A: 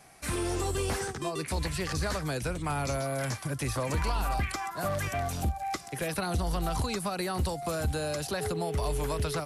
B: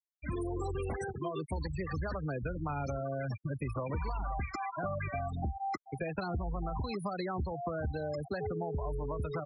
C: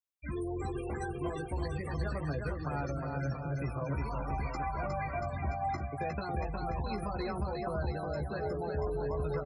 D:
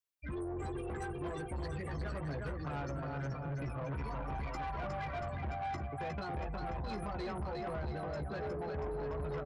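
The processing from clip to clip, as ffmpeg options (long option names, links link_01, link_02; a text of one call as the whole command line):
ffmpeg -i in.wav -af "afftfilt=real='re*gte(hypot(re,im),0.0447)':imag='im*gte(hypot(re,im),0.0447)':win_size=1024:overlap=0.75,acompressor=threshold=-32dB:ratio=6" out.wav
ffmpeg -i in.wav -filter_complex "[0:a]asplit=2[link_01][link_02];[link_02]adelay=14,volume=-5dB[link_03];[link_01][link_03]amix=inputs=2:normalize=0,aecho=1:1:360|684|975.6|1238|1474:0.631|0.398|0.251|0.158|0.1,volume=-3dB" out.wav
ffmpeg -i in.wav -af "asoftclip=type=tanh:threshold=-34.5dB" out.wav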